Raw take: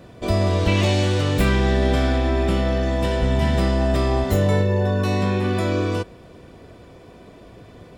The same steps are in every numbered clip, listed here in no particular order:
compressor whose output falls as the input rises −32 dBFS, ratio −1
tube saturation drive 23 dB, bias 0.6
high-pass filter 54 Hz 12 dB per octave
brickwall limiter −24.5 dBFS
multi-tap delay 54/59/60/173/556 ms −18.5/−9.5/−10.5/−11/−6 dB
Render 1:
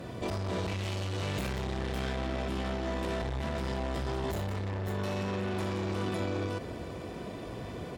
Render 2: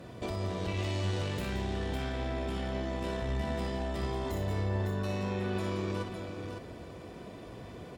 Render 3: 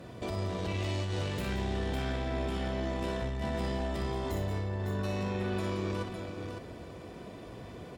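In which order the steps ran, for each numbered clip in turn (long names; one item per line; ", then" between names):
multi-tap delay, then tube saturation, then high-pass filter, then compressor whose output falls as the input rises, then brickwall limiter
brickwall limiter, then high-pass filter, then tube saturation, then compressor whose output falls as the input rises, then multi-tap delay
high-pass filter, then brickwall limiter, then tube saturation, then multi-tap delay, then compressor whose output falls as the input rises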